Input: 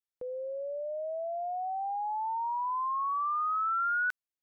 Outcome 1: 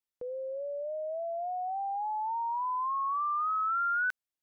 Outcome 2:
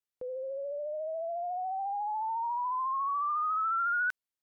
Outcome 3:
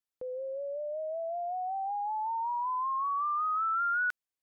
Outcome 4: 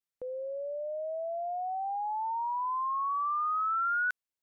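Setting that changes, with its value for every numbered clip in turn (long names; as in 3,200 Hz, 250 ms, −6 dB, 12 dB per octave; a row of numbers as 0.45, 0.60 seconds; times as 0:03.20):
pitch vibrato, speed: 3.5, 14, 5.3, 0.49 Hertz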